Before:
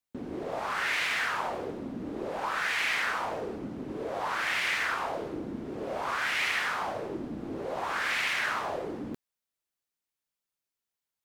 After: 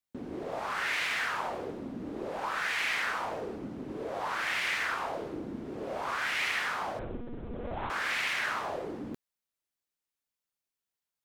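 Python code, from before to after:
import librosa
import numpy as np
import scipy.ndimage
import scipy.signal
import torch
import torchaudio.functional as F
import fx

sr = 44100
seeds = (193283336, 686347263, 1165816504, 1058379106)

y = fx.lpc_monotone(x, sr, seeds[0], pitch_hz=240.0, order=8, at=(6.99, 7.9))
y = y * 10.0 ** (-2.0 / 20.0)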